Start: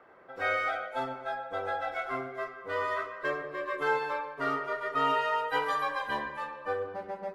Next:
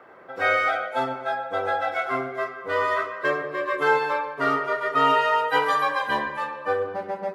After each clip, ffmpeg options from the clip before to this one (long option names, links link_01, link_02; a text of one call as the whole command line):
ffmpeg -i in.wav -af "highpass=84,volume=8dB" out.wav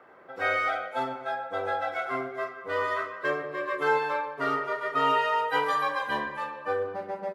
ffmpeg -i in.wav -filter_complex "[0:a]asplit=2[link_01][link_02];[link_02]adelay=41,volume=-12.5dB[link_03];[link_01][link_03]amix=inputs=2:normalize=0,volume=-5dB" out.wav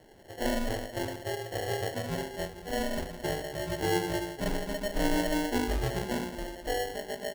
ffmpeg -i in.wav -af "acrusher=samples=36:mix=1:aa=0.000001,volume=-2.5dB" out.wav